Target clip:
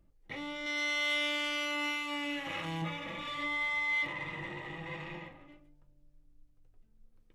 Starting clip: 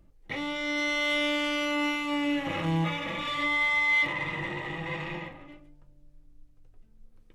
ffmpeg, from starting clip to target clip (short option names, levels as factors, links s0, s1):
-filter_complex "[0:a]asettb=1/sr,asplit=3[s0][s1][s2];[s0]atrim=end=0.664[s3];[s1]atrim=start=0.66:end=2.82,asetpts=PTS-STARTPTS,afade=t=in:d=0.004:c=qsin,afade=t=out:st=2.156:d=0.004:c=qsin,tiltshelf=f=770:g=-5.5[s4];[s2]atrim=start=2.816[s5];[s3][s4]acrossfade=d=0.004:c1=hsin:c2=qsin[s6];[s6][s5]acrossfade=d=0.004:c1=qsin:c2=hsin,volume=0.422"